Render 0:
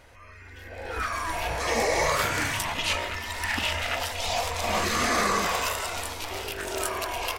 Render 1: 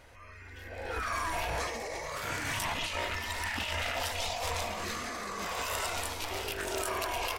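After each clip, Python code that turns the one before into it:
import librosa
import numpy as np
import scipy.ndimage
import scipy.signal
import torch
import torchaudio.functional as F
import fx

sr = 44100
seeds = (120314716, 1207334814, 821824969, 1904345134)

y = fx.over_compress(x, sr, threshold_db=-30.0, ratio=-1.0)
y = F.gain(torch.from_numpy(y), -4.5).numpy()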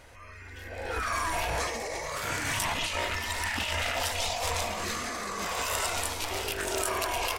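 y = fx.peak_eq(x, sr, hz=8400.0, db=3.5, octaves=1.1)
y = F.gain(torch.from_numpy(y), 3.0).numpy()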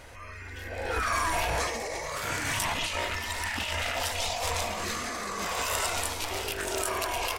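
y = fx.rider(x, sr, range_db=10, speed_s=2.0)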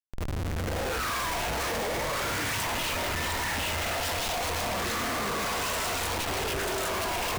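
y = fx.schmitt(x, sr, flips_db=-37.5)
y = F.gain(torch.from_numpy(y), 1.5).numpy()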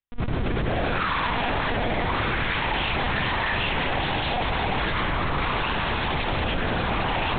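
y = fx.lpc_monotone(x, sr, seeds[0], pitch_hz=240.0, order=8)
y = F.gain(torch.from_numpy(y), 6.0).numpy()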